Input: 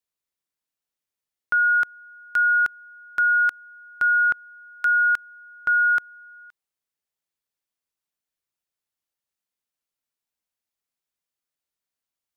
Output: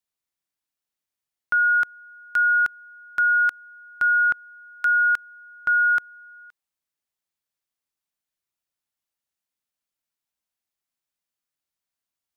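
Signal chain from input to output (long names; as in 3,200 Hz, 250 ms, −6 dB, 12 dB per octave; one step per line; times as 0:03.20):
parametric band 460 Hz −5.5 dB 0.3 octaves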